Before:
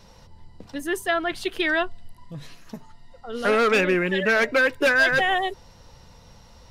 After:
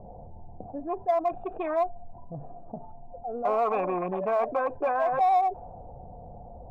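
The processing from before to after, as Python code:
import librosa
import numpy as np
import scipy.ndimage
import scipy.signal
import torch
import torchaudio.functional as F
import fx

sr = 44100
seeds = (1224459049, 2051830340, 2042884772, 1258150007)

p1 = fx.wiener(x, sr, points=41)
p2 = fx.env_lowpass(p1, sr, base_hz=490.0, full_db=-23.0)
p3 = fx.formant_cascade(p2, sr, vowel='a')
p4 = np.clip(p3, -10.0 ** (-35.0 / 20.0), 10.0 ** (-35.0 / 20.0))
p5 = p3 + (p4 * 10.0 ** (-8.0 / 20.0))
p6 = fx.env_flatten(p5, sr, amount_pct=50)
y = p6 * 10.0 ** (5.5 / 20.0)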